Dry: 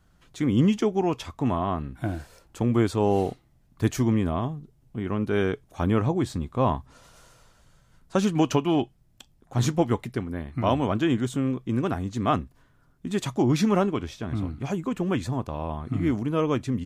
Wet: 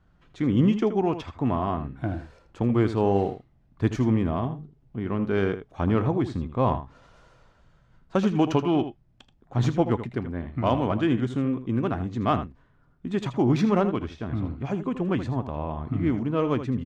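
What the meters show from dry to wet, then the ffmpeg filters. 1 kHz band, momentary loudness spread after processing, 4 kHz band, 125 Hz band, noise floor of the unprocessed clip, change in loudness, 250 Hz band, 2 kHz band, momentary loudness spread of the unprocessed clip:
0.0 dB, 10 LU, -3.5 dB, +0.5 dB, -62 dBFS, 0.0 dB, +0.5 dB, -1.0 dB, 10 LU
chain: -af "aecho=1:1:80:0.282,adynamicsmooth=sensitivity=1:basefreq=3.4k"

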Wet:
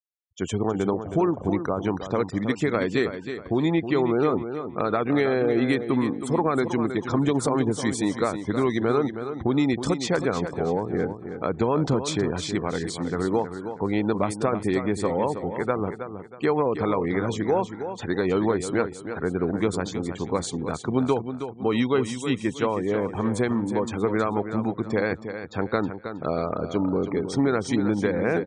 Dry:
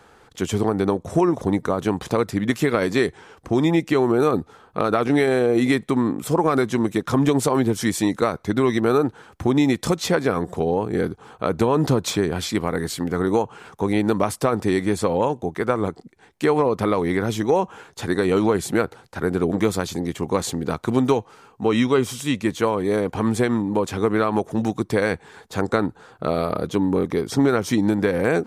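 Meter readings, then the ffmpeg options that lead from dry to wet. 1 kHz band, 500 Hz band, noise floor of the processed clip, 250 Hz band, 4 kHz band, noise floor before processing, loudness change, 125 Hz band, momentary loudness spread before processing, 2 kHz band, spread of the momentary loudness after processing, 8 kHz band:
-3.5 dB, -3.5 dB, -41 dBFS, -3.5 dB, -4.5 dB, -53 dBFS, -3.5 dB, -3.5 dB, 7 LU, -3.5 dB, 6 LU, -5.0 dB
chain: -af "aresample=22050,aresample=44100,afftfilt=real='re*gte(hypot(re,im),0.0224)':imag='im*gte(hypot(re,im),0.0224)':win_size=1024:overlap=0.75,aecho=1:1:319|638|957|1276:0.335|0.107|0.0343|0.011,volume=-4dB"

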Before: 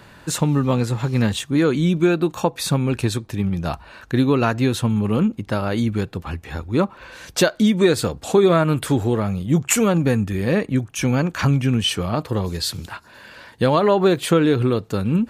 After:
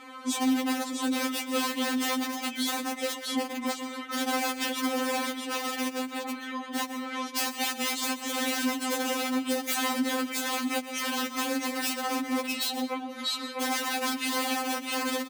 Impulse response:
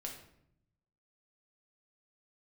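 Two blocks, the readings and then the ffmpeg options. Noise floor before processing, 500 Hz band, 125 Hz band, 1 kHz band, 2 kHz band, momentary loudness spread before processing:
-47 dBFS, -14.5 dB, under -40 dB, -4.5 dB, -3.0 dB, 9 LU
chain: -filter_complex "[0:a]lowshelf=f=260:g=-11.5,afreqshift=-410,acontrast=58,lowpass=f=4k:p=1,aecho=1:1:650:0.531,aeval=exprs='(mod(4.47*val(0)+1,2)-1)/4.47':c=same,asplit=2[a][b];[1:a]atrim=start_sample=2205,adelay=124[c];[b][c]afir=irnorm=-1:irlink=0,volume=-12.5dB[d];[a][d]amix=inputs=2:normalize=0,acompressor=threshold=-26dB:ratio=6,highpass=f=140:w=0.5412,highpass=f=140:w=1.3066,afftfilt=real='re*3.46*eq(mod(b,12),0)':imag='im*3.46*eq(mod(b,12),0)':win_size=2048:overlap=0.75,volume=1dB"

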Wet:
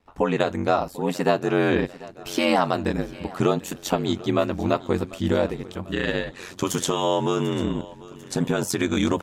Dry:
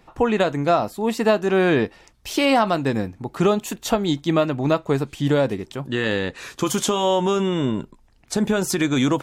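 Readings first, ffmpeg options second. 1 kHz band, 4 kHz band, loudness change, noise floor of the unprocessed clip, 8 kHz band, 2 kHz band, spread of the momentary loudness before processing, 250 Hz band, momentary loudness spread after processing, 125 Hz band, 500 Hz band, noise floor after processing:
-2.5 dB, -3.0 dB, -3.0 dB, -55 dBFS, -3.0 dB, -3.0 dB, 9 LU, -3.0 dB, 9 LU, -2.5 dB, -3.0 dB, -45 dBFS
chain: -af "aecho=1:1:744|1488|2232|2976|3720:0.106|0.0614|0.0356|0.0207|0.012,agate=range=-10dB:threshold=-53dB:ratio=16:detection=peak,aeval=exprs='val(0)*sin(2*PI*45*n/s)':c=same"

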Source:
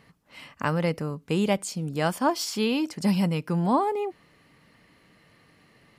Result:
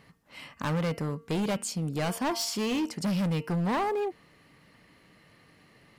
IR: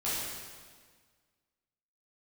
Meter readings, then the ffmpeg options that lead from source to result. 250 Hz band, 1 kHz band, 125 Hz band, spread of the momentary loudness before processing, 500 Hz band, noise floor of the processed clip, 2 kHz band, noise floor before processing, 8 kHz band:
-4.0 dB, -5.0 dB, -2.5 dB, 7 LU, -4.0 dB, -60 dBFS, -3.5 dB, -60 dBFS, -0.5 dB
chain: -af "bandreject=f=229.1:t=h:w=4,bandreject=f=458.2:t=h:w=4,bandreject=f=687.3:t=h:w=4,bandreject=f=916.4:t=h:w=4,bandreject=f=1.1455k:t=h:w=4,bandreject=f=1.3746k:t=h:w=4,bandreject=f=1.6037k:t=h:w=4,bandreject=f=1.8328k:t=h:w=4,bandreject=f=2.0619k:t=h:w=4,bandreject=f=2.291k:t=h:w=4,bandreject=f=2.5201k:t=h:w=4,bandreject=f=2.7492k:t=h:w=4,bandreject=f=2.9783k:t=h:w=4,asoftclip=type=hard:threshold=-25.5dB"

